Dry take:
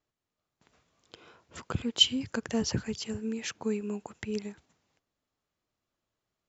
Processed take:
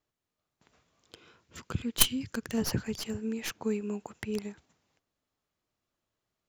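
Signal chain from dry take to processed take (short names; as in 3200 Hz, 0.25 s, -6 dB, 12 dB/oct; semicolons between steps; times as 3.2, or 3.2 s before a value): tracing distortion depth 0.24 ms; 1.18–2.58 bell 730 Hz -8.5 dB 1.5 oct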